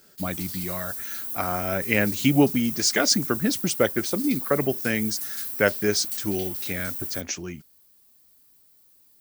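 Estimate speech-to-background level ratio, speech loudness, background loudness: 5.0 dB, -25.0 LUFS, -30.0 LUFS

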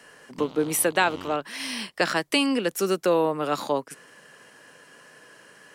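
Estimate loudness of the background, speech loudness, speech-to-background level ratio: -43.0 LUFS, -25.0 LUFS, 18.0 dB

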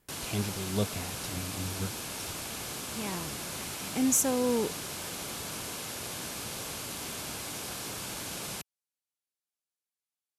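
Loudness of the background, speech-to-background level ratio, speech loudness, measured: -36.5 LUFS, 4.5 dB, -32.0 LUFS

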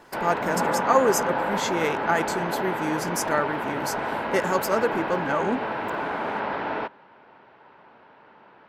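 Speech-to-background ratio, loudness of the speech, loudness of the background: 1.0 dB, -27.0 LUFS, -28.0 LUFS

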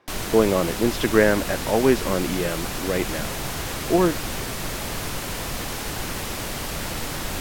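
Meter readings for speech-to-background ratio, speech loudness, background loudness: 6.5 dB, -22.5 LUFS, -29.0 LUFS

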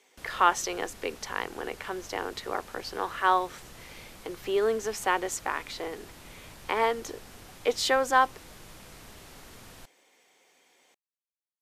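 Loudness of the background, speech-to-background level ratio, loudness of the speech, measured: -48.5 LUFS, 19.5 dB, -29.0 LUFS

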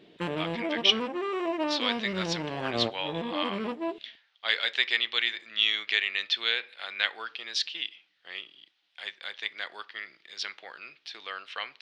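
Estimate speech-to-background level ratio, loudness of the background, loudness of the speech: 3.0 dB, -32.5 LUFS, -29.5 LUFS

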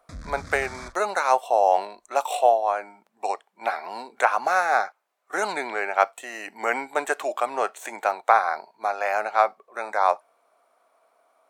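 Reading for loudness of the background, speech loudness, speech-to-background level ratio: -41.5 LUFS, -24.5 LUFS, 17.0 dB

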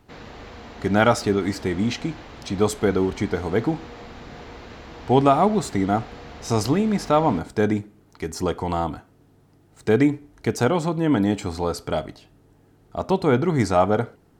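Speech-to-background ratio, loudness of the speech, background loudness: 18.5 dB, -22.5 LUFS, -41.0 LUFS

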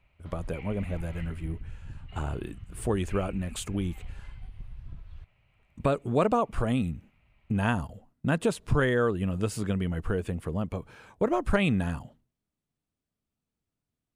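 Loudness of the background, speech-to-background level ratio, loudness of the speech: -46.0 LUFS, 16.0 dB, -30.0 LUFS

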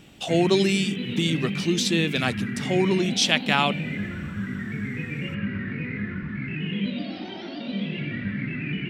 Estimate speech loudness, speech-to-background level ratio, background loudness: -23.5 LUFS, 6.5 dB, -30.0 LUFS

